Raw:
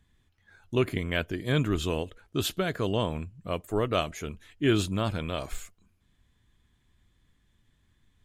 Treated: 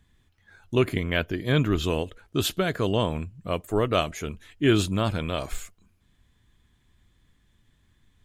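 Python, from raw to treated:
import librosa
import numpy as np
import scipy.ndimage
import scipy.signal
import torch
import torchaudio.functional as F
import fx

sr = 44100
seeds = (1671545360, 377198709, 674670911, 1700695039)

y = fx.peak_eq(x, sr, hz=8600.0, db=-14.5, octaves=0.35, at=(0.99, 1.84))
y = y * librosa.db_to_amplitude(3.5)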